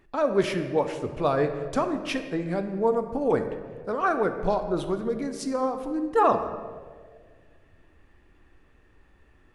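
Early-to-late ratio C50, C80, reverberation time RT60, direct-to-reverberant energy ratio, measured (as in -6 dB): 8.5 dB, 10.0 dB, 1.7 s, 7.0 dB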